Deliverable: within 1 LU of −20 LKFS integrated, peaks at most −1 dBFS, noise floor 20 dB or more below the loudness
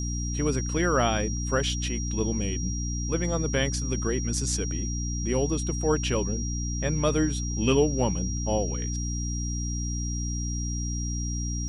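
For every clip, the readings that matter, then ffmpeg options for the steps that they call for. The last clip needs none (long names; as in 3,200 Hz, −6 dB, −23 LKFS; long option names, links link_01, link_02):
mains hum 60 Hz; hum harmonics up to 300 Hz; level of the hum −28 dBFS; interfering tone 5,700 Hz; level of the tone −35 dBFS; integrated loudness −27.5 LKFS; sample peak −11.0 dBFS; target loudness −20.0 LKFS
→ -af "bandreject=frequency=60:width_type=h:width=4,bandreject=frequency=120:width_type=h:width=4,bandreject=frequency=180:width_type=h:width=4,bandreject=frequency=240:width_type=h:width=4,bandreject=frequency=300:width_type=h:width=4"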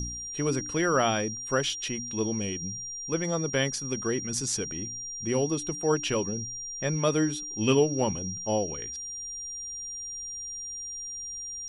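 mains hum none found; interfering tone 5,700 Hz; level of the tone −35 dBFS
→ -af "bandreject=frequency=5700:width=30"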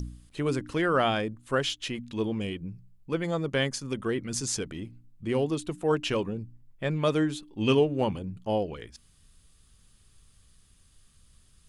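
interfering tone none found; integrated loudness −29.5 LKFS; sample peak −12.5 dBFS; target loudness −20.0 LKFS
→ -af "volume=9.5dB"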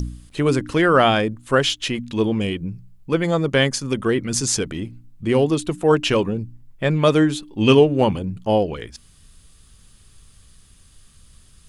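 integrated loudness −20.0 LKFS; sample peak −3.0 dBFS; background noise floor −51 dBFS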